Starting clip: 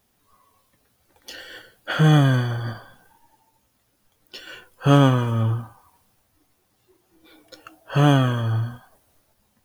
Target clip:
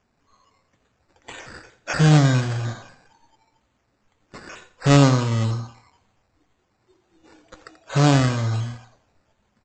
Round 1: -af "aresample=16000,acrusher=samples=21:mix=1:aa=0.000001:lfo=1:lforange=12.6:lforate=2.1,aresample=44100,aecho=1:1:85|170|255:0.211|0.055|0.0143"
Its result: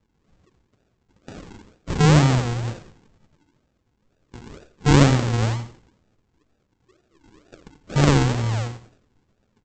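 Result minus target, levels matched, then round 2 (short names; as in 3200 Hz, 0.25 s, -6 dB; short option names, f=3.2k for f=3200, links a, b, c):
decimation with a swept rate: distortion +12 dB
-af "aresample=16000,acrusher=samples=4:mix=1:aa=0.000001:lfo=1:lforange=2.4:lforate=2.1,aresample=44100,aecho=1:1:85|170|255:0.211|0.055|0.0143"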